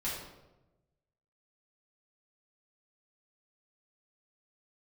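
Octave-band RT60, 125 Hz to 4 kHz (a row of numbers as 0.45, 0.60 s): 1.5, 1.2, 1.2, 0.90, 0.75, 0.65 s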